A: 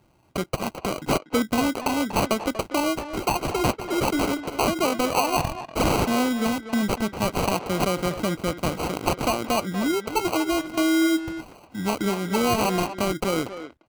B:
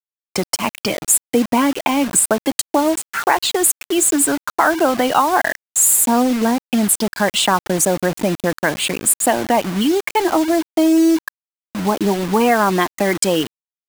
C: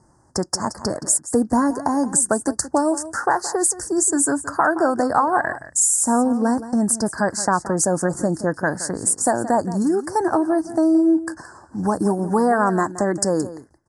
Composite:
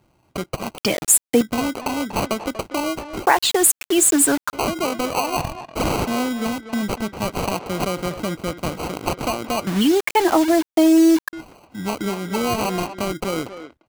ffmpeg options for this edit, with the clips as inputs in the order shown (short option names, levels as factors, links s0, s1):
-filter_complex "[1:a]asplit=3[s0][s1][s2];[0:a]asplit=4[s3][s4][s5][s6];[s3]atrim=end=0.782[s7];[s0]atrim=start=0.778:end=1.412[s8];[s4]atrim=start=1.408:end=3.262[s9];[s1]atrim=start=3.258:end=4.532[s10];[s5]atrim=start=4.528:end=9.672[s11];[s2]atrim=start=9.668:end=11.332[s12];[s6]atrim=start=11.328[s13];[s7][s8]acrossfade=d=0.004:c1=hsin:c2=hsin[s14];[s14][s9]acrossfade=d=0.004:c1=hsin:c2=hsin[s15];[s15][s10]acrossfade=d=0.004:c1=hsin:c2=hsin[s16];[s16][s11]acrossfade=d=0.004:c1=hsin:c2=hsin[s17];[s17][s12]acrossfade=d=0.004:c1=hsin:c2=hsin[s18];[s18][s13]acrossfade=d=0.004:c1=hsin:c2=hsin"